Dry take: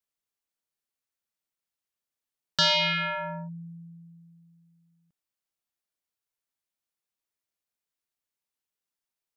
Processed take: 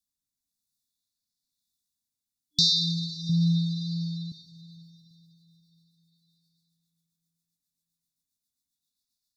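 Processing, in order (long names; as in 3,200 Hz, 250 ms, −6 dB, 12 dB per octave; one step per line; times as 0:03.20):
brick-wall band-stop 300–3,400 Hz
0:03.29–0:04.32: parametric band 140 Hz +14.5 dB 1.4 octaves
in parallel at −1 dB: downward compressor, threshold −34 dBFS, peak gain reduction 11.5 dB
on the sum: rotating-speaker cabinet horn 1 Hz, later 7.5 Hz, at 0:02.69
on a send at −10.5 dB: convolution reverb RT60 4.5 s, pre-delay 49 ms
on the sum: auto-filter bell 0.38 Hz 790–4,600 Hz +8 dB
level +2.5 dB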